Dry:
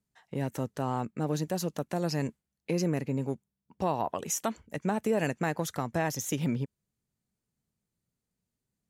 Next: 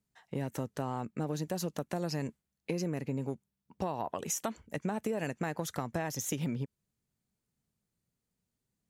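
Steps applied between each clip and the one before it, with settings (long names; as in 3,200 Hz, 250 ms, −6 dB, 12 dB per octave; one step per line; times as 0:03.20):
downward compressor, threshold −30 dBFS, peak gain reduction 7.5 dB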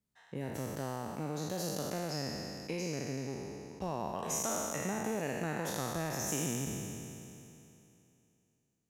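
peak hold with a decay on every bin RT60 2.80 s
level −6 dB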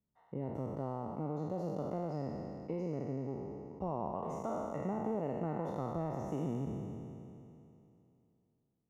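Savitzky-Golay smoothing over 65 samples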